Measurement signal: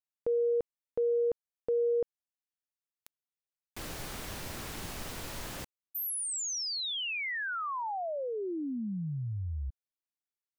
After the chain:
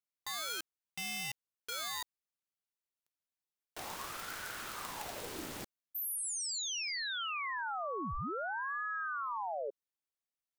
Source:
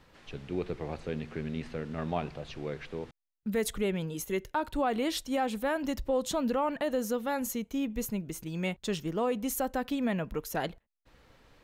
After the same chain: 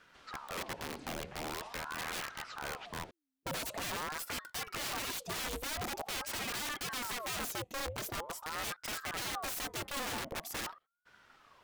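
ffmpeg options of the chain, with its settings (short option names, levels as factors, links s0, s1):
-af "aeval=exprs='(mod(33.5*val(0)+1,2)-1)/33.5':c=same,aeval=exprs='val(0)*sin(2*PI*870*n/s+870*0.7/0.45*sin(2*PI*0.45*n/s))':c=same"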